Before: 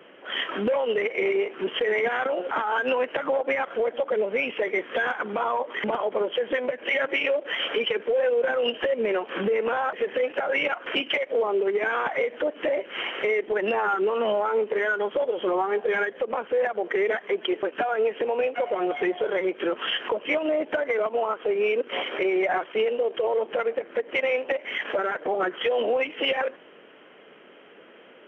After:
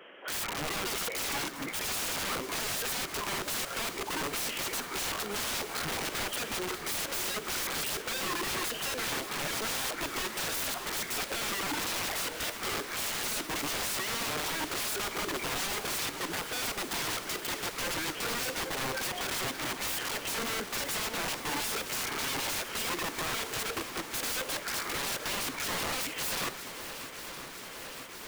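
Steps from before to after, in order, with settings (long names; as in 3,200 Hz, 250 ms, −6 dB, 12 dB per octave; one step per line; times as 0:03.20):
pitch shifter gated in a rhythm −5.5 semitones, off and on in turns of 432 ms
low-shelf EQ 480 Hz −9.5 dB
wrap-around overflow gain 30.5 dB
feedback echo with a long and a short gap by turns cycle 965 ms, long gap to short 1.5 to 1, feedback 77%, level −13.5 dB
level +1.5 dB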